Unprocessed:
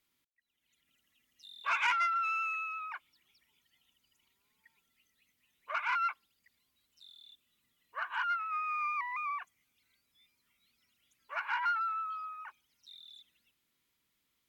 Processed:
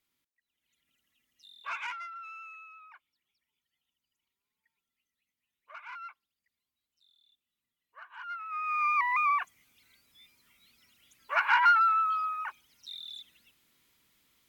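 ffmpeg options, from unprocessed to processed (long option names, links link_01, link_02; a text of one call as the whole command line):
ffmpeg -i in.wav -af "volume=20dB,afade=type=out:start_time=1.46:duration=0.57:silence=0.316228,afade=type=in:start_time=8.18:duration=0.37:silence=0.281838,afade=type=in:start_time=8.55:duration=0.56:silence=0.281838" out.wav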